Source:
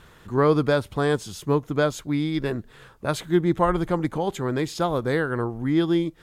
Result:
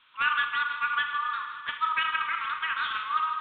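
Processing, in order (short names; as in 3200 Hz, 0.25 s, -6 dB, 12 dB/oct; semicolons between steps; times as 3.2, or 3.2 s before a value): regenerating reverse delay 0.148 s, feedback 81%, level -12 dB; mistuned SSB +350 Hz 210–2200 Hz; reverb RT60 1.8 s, pre-delay 5 ms, DRR 5 dB; wide varispeed 1.83×; gain -6.5 dB; G.726 32 kbps 8000 Hz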